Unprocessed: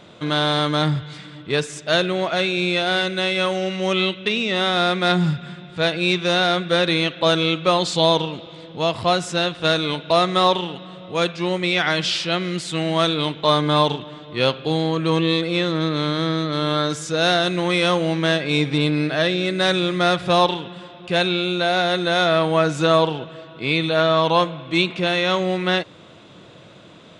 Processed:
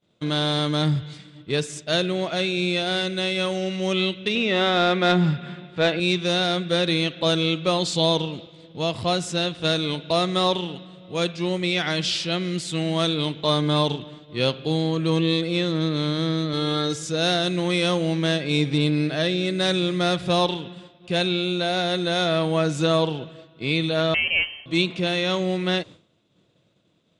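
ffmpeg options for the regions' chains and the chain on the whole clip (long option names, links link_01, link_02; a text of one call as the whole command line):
ffmpeg -i in.wav -filter_complex "[0:a]asettb=1/sr,asplit=3[link_01][link_02][link_03];[link_01]atrim=end=4.354[link_04];[link_02]atrim=start=4.35:end=6,asetpts=PTS-STARTPTS,afade=type=in:duration=0.004:curve=qsin,afade=type=out:start_time=1.646:duration=0.004:curve=qsin,lowpass=2100,aemphasis=mode=production:type=bsi,acontrast=72[link_05];[link_03]atrim=start=5.996[link_06];[link_04][link_05]acrossfade=duration=0.004:curve1=hsin:curve2=qsin[link_07];[link_07][link_06]acrossfade=duration=0.004:curve1=qsin:curve2=hsin,asettb=1/sr,asplit=3[link_08][link_09][link_10];[link_08]atrim=end=16.534[link_11];[link_09]atrim=start=16.53:end=17.03,asetpts=PTS-STARTPTS,afade=type=in:duration=0.004:curve=qsin,afade=type=out:start_time=0.496:duration=0.004:curve=qsin,aecho=1:1:2.4:0.54,atrim=end_sample=22050,acrossover=split=7600[link_12][link_13];[link_13]acompressor=threshold=-42dB:ratio=4:attack=1:release=60[link_14];[link_12][link_14]amix=inputs=2:normalize=0[link_15];[link_10]atrim=start=17.026[link_16];[link_11][link_15]acrossfade=duration=0.004:curve1=hsin:curve2=qsin[link_17];[link_17][link_16]acrossfade=duration=0.004:curve1=qsin:curve2=hsin,asettb=1/sr,asplit=3[link_18][link_19][link_20];[link_18]atrim=end=24.144[link_21];[link_19]atrim=start=24.14:end=24.66,asetpts=PTS-STARTPTS,afade=type=in:duration=0.004:curve=qsin,afade=type=out:start_time=0.516:duration=0.004:curve=qsin,equalizer=frequency=69:width=0.37:gain=-8,lowpass=frequency=2800:width_type=q:width=0.5098,lowpass=frequency=2800:width_type=q:width=0.6013,lowpass=frequency=2800:width_type=q:width=0.9,lowpass=frequency=2800:width_type=q:width=2.563,afreqshift=-3300[link_22];[link_20]atrim=start=24.656[link_23];[link_21][link_22]acrossfade=duration=0.004:curve1=hsin:curve2=qsin[link_24];[link_24][link_23]acrossfade=duration=0.004:curve1=qsin:curve2=hsin,agate=range=-33dB:threshold=-33dB:ratio=3:detection=peak,equalizer=frequency=1200:width=0.56:gain=-8" out.wav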